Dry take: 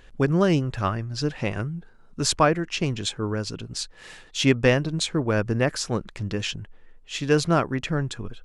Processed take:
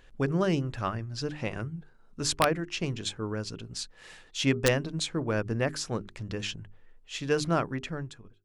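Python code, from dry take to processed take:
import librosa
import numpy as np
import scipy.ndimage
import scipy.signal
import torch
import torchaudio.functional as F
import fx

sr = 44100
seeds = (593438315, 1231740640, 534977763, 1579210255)

y = fx.fade_out_tail(x, sr, length_s=0.74)
y = fx.hum_notches(y, sr, base_hz=50, count=8)
y = (np.mod(10.0 ** (6.5 / 20.0) * y + 1.0, 2.0) - 1.0) / 10.0 ** (6.5 / 20.0)
y = y * 10.0 ** (-5.5 / 20.0)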